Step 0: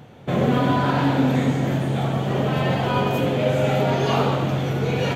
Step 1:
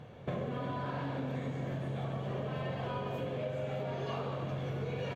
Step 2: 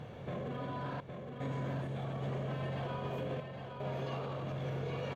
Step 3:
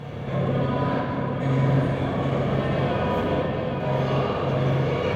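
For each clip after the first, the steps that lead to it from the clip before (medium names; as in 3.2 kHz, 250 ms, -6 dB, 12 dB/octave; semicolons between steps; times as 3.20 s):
low-pass 3.3 kHz 6 dB/octave; comb 1.8 ms, depth 33%; compression 10:1, threshold -28 dBFS, peak gain reduction 14 dB; trim -5.5 dB
peak limiter -35.5 dBFS, peak gain reduction 9.5 dB; trance gate "xxxxx..xxxxx" 75 bpm; delay 814 ms -5.5 dB; trim +3.5 dB
reverberation RT60 2.8 s, pre-delay 4 ms, DRR -5.5 dB; trim +9 dB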